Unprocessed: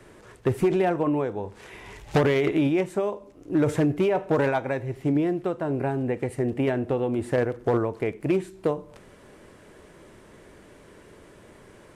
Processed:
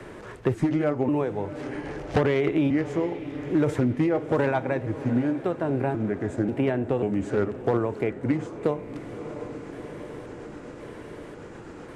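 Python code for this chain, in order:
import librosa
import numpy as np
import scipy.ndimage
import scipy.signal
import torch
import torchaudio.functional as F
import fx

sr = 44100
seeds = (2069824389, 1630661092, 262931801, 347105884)

y = fx.pitch_trill(x, sr, semitones=-3.0, every_ms=540)
y = fx.high_shelf(y, sr, hz=8100.0, db=-9.0)
y = fx.echo_diffused(y, sr, ms=682, feedback_pct=59, wet_db=-15.5)
y = fx.band_squash(y, sr, depth_pct=40)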